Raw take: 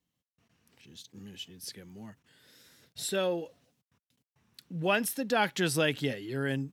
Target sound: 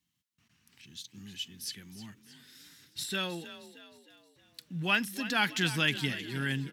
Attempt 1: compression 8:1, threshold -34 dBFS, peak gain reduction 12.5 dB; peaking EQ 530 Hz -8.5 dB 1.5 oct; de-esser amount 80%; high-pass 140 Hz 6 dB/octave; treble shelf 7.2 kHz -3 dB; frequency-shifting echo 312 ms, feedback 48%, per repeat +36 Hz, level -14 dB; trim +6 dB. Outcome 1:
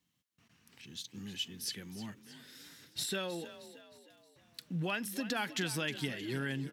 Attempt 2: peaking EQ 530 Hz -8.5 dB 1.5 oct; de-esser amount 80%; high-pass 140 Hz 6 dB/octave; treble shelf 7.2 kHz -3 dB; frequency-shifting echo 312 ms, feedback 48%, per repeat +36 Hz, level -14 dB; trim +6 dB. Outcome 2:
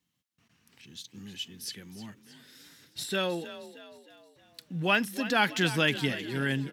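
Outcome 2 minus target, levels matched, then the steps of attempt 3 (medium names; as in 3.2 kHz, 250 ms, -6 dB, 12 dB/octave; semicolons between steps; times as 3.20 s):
500 Hz band +6.0 dB
peaking EQ 530 Hz -19 dB 1.5 oct; de-esser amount 80%; high-pass 140 Hz 6 dB/octave; treble shelf 7.2 kHz -3 dB; frequency-shifting echo 312 ms, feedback 48%, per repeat +36 Hz, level -14 dB; trim +6 dB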